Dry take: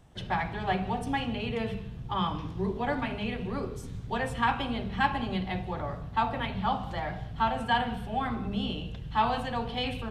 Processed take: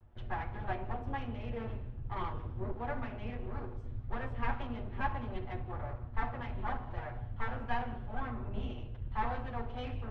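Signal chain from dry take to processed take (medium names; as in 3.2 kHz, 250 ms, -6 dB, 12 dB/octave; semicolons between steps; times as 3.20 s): comb filter that takes the minimum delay 8.3 ms; low-pass 1.8 kHz 12 dB/octave; resonant low shelf 100 Hz +13.5 dB, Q 1.5; trim -7 dB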